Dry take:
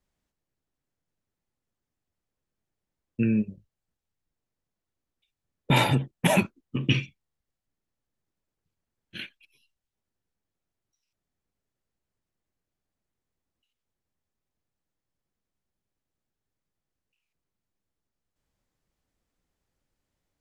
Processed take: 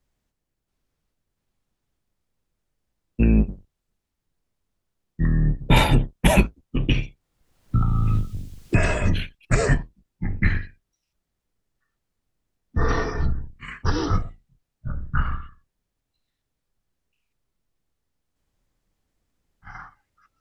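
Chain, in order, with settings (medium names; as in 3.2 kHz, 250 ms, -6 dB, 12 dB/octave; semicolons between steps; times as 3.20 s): octave divider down 2 oct, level +3 dB; ever faster or slower copies 681 ms, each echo -6 st, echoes 2; 6.89–9.19 s: three bands compressed up and down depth 100%; trim +3 dB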